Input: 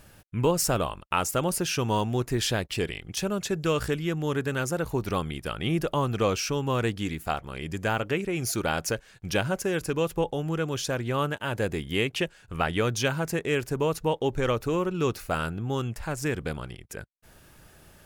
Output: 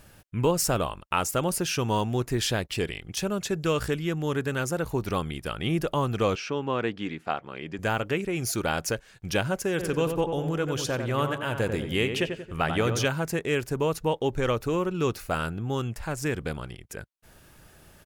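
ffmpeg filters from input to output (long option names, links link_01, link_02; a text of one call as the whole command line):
ffmpeg -i in.wav -filter_complex "[0:a]asettb=1/sr,asplit=3[link_01][link_02][link_03];[link_01]atrim=end=6.354[link_04];[link_02]atrim=start=6.35:end=7.79,asetpts=PTS-STARTPTS,afade=type=in:duration=0.004:curve=qsin,afade=type=out:start_time=1.436:duration=0.004:curve=qsin,highpass=190,lowpass=3300[link_05];[link_03]atrim=start=7.786[link_06];[link_04][link_05]acrossfade=duration=0.004:curve1=hsin:curve2=qsin[link_07];[link_07][link_06]acrossfade=duration=0.004:curve1=qsin:curve2=hsin,asplit=3[link_08][link_09][link_10];[link_08]afade=type=out:start_time=9.78:duration=0.02[link_11];[link_09]asplit=2[link_12][link_13];[link_13]adelay=92,lowpass=frequency=2000:poles=1,volume=-6dB,asplit=2[link_14][link_15];[link_15]adelay=92,lowpass=frequency=2000:poles=1,volume=0.49,asplit=2[link_16][link_17];[link_17]adelay=92,lowpass=frequency=2000:poles=1,volume=0.49,asplit=2[link_18][link_19];[link_19]adelay=92,lowpass=frequency=2000:poles=1,volume=0.49,asplit=2[link_20][link_21];[link_21]adelay=92,lowpass=frequency=2000:poles=1,volume=0.49,asplit=2[link_22][link_23];[link_23]adelay=92,lowpass=frequency=2000:poles=1,volume=0.49[link_24];[link_12][link_14][link_16][link_18][link_20][link_22][link_24]amix=inputs=7:normalize=0,afade=type=in:start_time=9.78:duration=0.02,afade=type=out:start_time=13.05:duration=0.02[link_25];[link_10]afade=type=in:start_time=13.05:duration=0.02[link_26];[link_11][link_25][link_26]amix=inputs=3:normalize=0" out.wav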